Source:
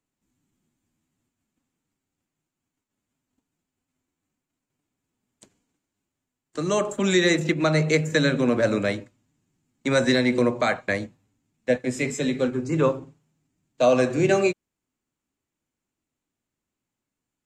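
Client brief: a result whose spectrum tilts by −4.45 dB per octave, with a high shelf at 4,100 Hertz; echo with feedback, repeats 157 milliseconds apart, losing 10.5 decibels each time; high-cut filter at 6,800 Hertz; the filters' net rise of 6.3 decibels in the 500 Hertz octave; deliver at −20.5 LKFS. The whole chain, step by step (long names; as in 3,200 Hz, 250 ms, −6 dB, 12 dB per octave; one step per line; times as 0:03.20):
low-pass filter 6,800 Hz
parametric band 500 Hz +7.5 dB
high-shelf EQ 4,100 Hz +6.5 dB
repeating echo 157 ms, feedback 30%, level −10.5 dB
level −2.5 dB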